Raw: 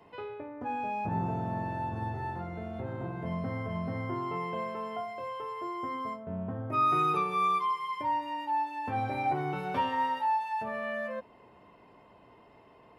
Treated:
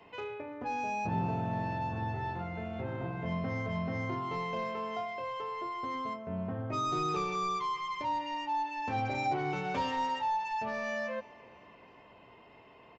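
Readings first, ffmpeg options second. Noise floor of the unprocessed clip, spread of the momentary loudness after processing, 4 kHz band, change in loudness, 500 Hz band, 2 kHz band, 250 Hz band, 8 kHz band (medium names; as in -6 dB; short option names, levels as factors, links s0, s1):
-58 dBFS, 6 LU, +3.0 dB, -2.0 dB, -0.5 dB, +0.5 dB, -0.5 dB, no reading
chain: -filter_complex "[0:a]equalizer=f=2600:w=1.5:g=7.5,bandreject=f=50:t=h:w=6,bandreject=f=100:t=h:w=6,bandreject=f=150:t=h:w=6,bandreject=f=200:t=h:w=6,bandreject=f=250:t=h:w=6,bandreject=f=300:t=h:w=6,bandreject=f=350:t=h:w=6,acrossover=split=770[s0][s1];[s1]asoftclip=type=tanh:threshold=0.0168[s2];[s0][s2]amix=inputs=2:normalize=0,aecho=1:1:338|676|1014:0.0668|0.0354|0.0188,aresample=16000,aresample=44100"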